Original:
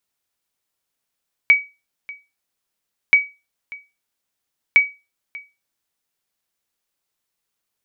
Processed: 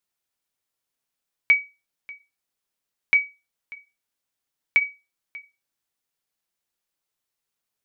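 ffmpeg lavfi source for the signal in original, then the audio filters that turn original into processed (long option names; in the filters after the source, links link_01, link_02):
-f lavfi -i "aevalsrc='0.631*(sin(2*PI*2270*mod(t,1.63))*exp(-6.91*mod(t,1.63)/0.26)+0.0794*sin(2*PI*2270*max(mod(t,1.63)-0.59,0))*exp(-6.91*max(mod(t,1.63)-0.59,0)/0.26))':duration=4.89:sample_rate=44100"
-af "flanger=delay=5.6:depth=2.4:regen=-63:speed=0.6:shape=sinusoidal"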